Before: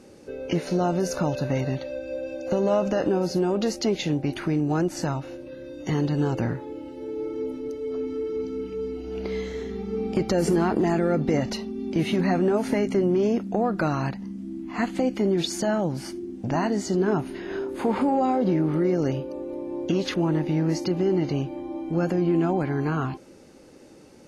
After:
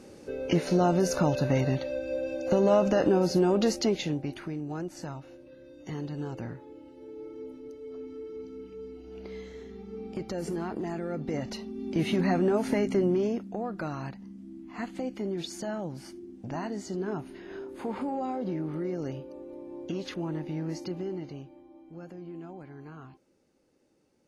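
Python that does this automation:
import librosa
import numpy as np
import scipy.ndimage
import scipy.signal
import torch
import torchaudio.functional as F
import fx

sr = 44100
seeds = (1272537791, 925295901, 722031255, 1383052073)

y = fx.gain(x, sr, db=fx.line((3.72, 0.0), (4.55, -11.5), (11.07, -11.5), (12.05, -3.0), (13.09, -3.0), (13.51, -10.0), (20.92, -10.0), (21.7, -20.0)))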